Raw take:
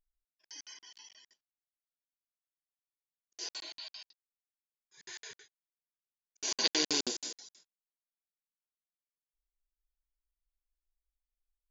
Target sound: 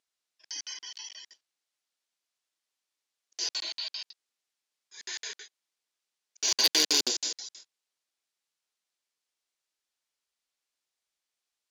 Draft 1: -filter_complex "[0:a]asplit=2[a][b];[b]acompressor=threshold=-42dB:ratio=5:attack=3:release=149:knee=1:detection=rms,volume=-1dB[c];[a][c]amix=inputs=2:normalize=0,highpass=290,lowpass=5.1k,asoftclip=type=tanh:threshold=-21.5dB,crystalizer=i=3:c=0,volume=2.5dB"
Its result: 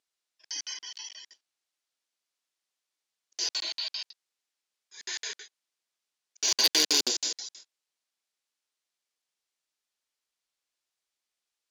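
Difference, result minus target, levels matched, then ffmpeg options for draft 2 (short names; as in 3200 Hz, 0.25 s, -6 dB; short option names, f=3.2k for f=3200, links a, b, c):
compressor: peak gain reduction -7 dB
-filter_complex "[0:a]asplit=2[a][b];[b]acompressor=threshold=-50.5dB:ratio=5:attack=3:release=149:knee=1:detection=rms,volume=-1dB[c];[a][c]amix=inputs=2:normalize=0,highpass=290,lowpass=5.1k,asoftclip=type=tanh:threshold=-21.5dB,crystalizer=i=3:c=0,volume=2.5dB"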